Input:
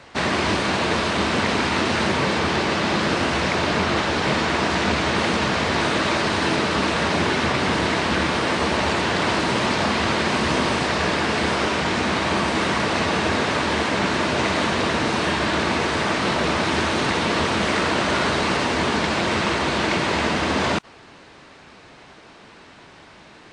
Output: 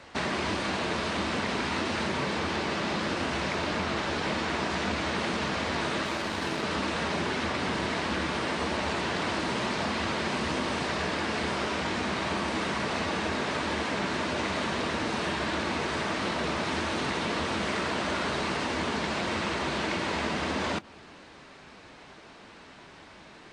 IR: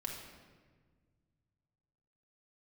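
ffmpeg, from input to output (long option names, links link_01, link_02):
-filter_complex "[0:a]flanger=delay=3.5:depth=1.7:regen=-71:speed=1.6:shape=sinusoidal,asettb=1/sr,asplit=3[link_01][link_02][link_03];[link_01]atrim=end=6.054[link_04];[link_02]atrim=start=6.05:end=6.63,asetpts=PTS-STARTPTS,afade=type=in:duration=0.004:curve=qsin,afade=type=out:start_time=0.576:duration=0.004:curve=qsin,aeval=exprs='0.2*(cos(1*acos(clip(val(0)/0.2,-1,1)))-cos(1*PI/2))+0.0178*(cos(3*acos(clip(val(0)/0.2,-1,1)))-cos(3*PI/2))+0.00708*(cos(7*acos(clip(val(0)/0.2,-1,1)))-cos(7*PI/2))':channel_layout=same[link_05];[link_03]atrim=start=6.626[link_06];[link_04][link_05]acrossfade=duration=0.004:curve1=hsin:curve2=qsin[link_07];[link_07][link_06]acrossfade=duration=0.004:curve1=qsin:curve2=hsin,acompressor=threshold=-31dB:ratio=2,asplit=2[link_08][link_09];[1:a]atrim=start_sample=2205,asetrate=52920,aresample=44100[link_10];[link_09][link_10]afir=irnorm=-1:irlink=0,volume=-18.5dB[link_11];[link_08][link_11]amix=inputs=2:normalize=0"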